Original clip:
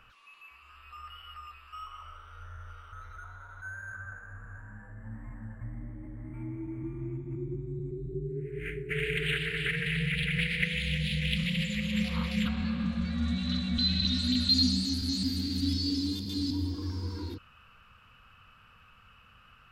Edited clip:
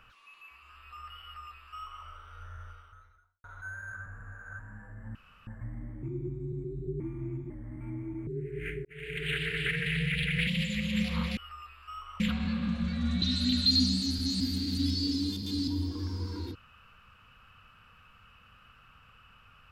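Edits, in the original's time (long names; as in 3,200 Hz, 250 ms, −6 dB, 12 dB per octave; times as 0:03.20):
0:01.22–0:02.05: duplicate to 0:12.37
0:02.63–0:03.44: fade out quadratic
0:04.06–0:04.59: reverse
0:05.15–0:05.47: fill with room tone
0:06.03–0:06.80: swap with 0:07.30–0:08.27
0:08.85–0:09.44: fade in
0:10.47–0:11.47: remove
0:13.39–0:14.05: remove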